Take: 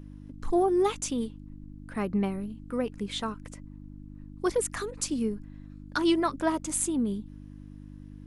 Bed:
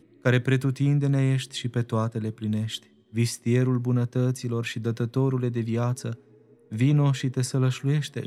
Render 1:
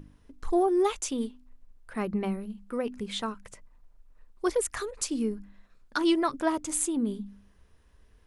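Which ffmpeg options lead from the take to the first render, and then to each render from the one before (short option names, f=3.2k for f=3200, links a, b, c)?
-af "bandreject=f=50:t=h:w=4,bandreject=f=100:t=h:w=4,bandreject=f=150:t=h:w=4,bandreject=f=200:t=h:w=4,bandreject=f=250:t=h:w=4,bandreject=f=300:t=h:w=4"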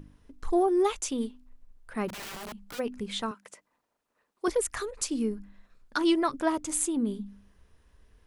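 -filter_complex "[0:a]asplit=3[a][b][c];[a]afade=t=out:st=2.08:d=0.02[d];[b]aeval=exprs='(mod(59.6*val(0)+1,2)-1)/59.6':c=same,afade=t=in:st=2.08:d=0.02,afade=t=out:st=2.78:d=0.02[e];[c]afade=t=in:st=2.78:d=0.02[f];[d][e][f]amix=inputs=3:normalize=0,asettb=1/sr,asplit=3[g][h][i];[g]atrim=end=3.314[j];[h]atrim=start=3.31:end=4.48,asetpts=PTS-STARTPTS,afade=t=in:d=0.004:c=qsin,afade=t=out:st=1.166:d=0.004:c=qsin,highpass=290[k];[i]atrim=start=4.476[l];[j][k]acrossfade=d=0.004:c1=hsin:c2=qsin[m];[m][l]acrossfade=d=0.004:c1=qsin:c2=hsin"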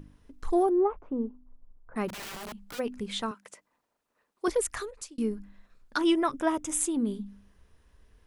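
-filter_complex "[0:a]asettb=1/sr,asplit=3[a][b][c];[a]atrim=end=0.694[d];[b]atrim=start=0.69:end=1.96,asetpts=PTS-STARTPTS,afade=t=in:d=0.004:c=qsin,afade=t=out:st=1.266:d=0.004:c=qsin,lowpass=f=1.2k:w=0.5412,lowpass=f=1.2k:w=1.3066[e];[c]atrim=start=1.956[f];[d][e]acrossfade=d=0.004:c1=hsin:c2=qsin[g];[g][f]acrossfade=d=0.004:c1=qsin:c2=hsin,asettb=1/sr,asplit=3[h][i][j];[h]atrim=end=6.014[k];[i]atrim=start=6.01:end=6.8,asetpts=PTS-STARTPTS,afade=t=in:d=0.004:c=qsin,afade=t=out:st=0.786:d=0.004:c=qsin,asuperstop=centerf=4400:order=4:qfactor=4.1[l];[j]atrim=start=6.796[m];[k][l]acrossfade=d=0.004:c1=hsin:c2=qsin[n];[n][m]acrossfade=d=0.004:c1=qsin:c2=hsin,asplit=2[o][p];[o]atrim=end=5.18,asetpts=PTS-STARTPTS,afade=t=out:st=4.72:d=0.46[q];[p]atrim=start=5.18,asetpts=PTS-STARTPTS,afade=t=in:d=0.004:c=hsin[r];[q][r]concat=n=2:v=0:a=1"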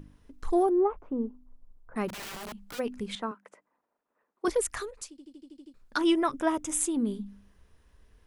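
-filter_complex "[0:a]asettb=1/sr,asplit=3[a][b][c];[a]atrim=end=3.154[d];[b]atrim=start=3.15:end=4.45,asetpts=PTS-STARTPTS,afade=t=in:d=0.004:c=qsin,afade=t=out:st=1.296:d=0.004:c=qsin,acrossover=split=170 2000:gain=0.2 1 0.158[e][f][g];[e][f][g]amix=inputs=3:normalize=0[h];[c]atrim=start=4.446[i];[d][h]acrossfade=d=0.004:c1=hsin:c2=qsin[j];[j][i]acrossfade=d=0.004:c1=qsin:c2=hsin,asplit=9[k][l][m][n][o][p][q][r][s];[k]atrim=end=5.182[t];[l]atrim=start=5.098:end=5.182[u];[m]atrim=start=5.098:end=5.182[v];[n]atrim=start=5.098:end=5.182[w];[o]atrim=start=5.098:end=5.182[x];[p]atrim=start=5.098:end=5.182[y];[q]atrim=start=5.098:end=5.182[z];[r]atrim=start=5.098:end=5.182[aa];[s]atrim=start=5.738[ab];[t][u]acrossfade=d=0.004:c1=hsin:c2=hsin[ac];[ac][v]acrossfade=d=0.004:c1=hsin:c2=hsin[ad];[ad][w]acrossfade=d=0.004:c1=hsin:c2=hsin[ae];[ae][x]acrossfade=d=0.004:c1=hsin:c2=hsin[af];[af][y]acrossfade=d=0.004:c1=hsin:c2=hsin[ag];[ag][z]acrossfade=d=0.004:c1=hsin:c2=hsin[ah];[ah][aa]acrossfade=d=0.004:c1=hsin:c2=hsin[ai];[ai][ab]acrossfade=d=0.004:c1=hsin:c2=hsin"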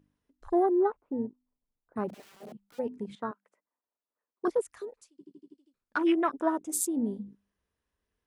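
-af "highpass=f=150:p=1,afwtdn=0.02"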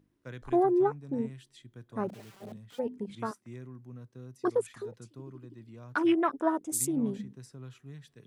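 -filter_complex "[1:a]volume=-22.5dB[a];[0:a][a]amix=inputs=2:normalize=0"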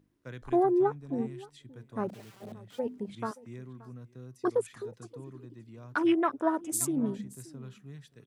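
-af "aecho=1:1:576:0.0891"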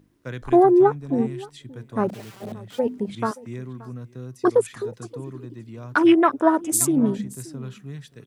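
-af "volume=10dB,alimiter=limit=-3dB:level=0:latency=1"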